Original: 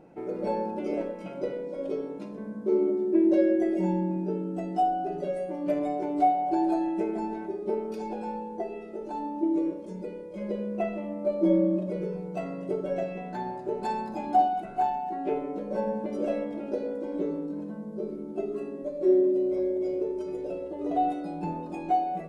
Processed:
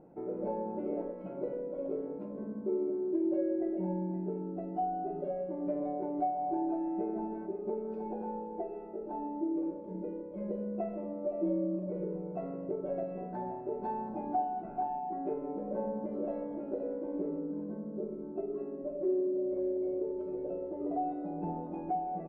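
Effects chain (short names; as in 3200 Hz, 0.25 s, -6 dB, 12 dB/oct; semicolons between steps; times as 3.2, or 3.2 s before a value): LPF 1000 Hz 12 dB/oct; compressor 2:1, threshold -30 dBFS, peak gain reduction 7.5 dB; on a send: echo 0.519 s -12 dB; on the sum: gain -3 dB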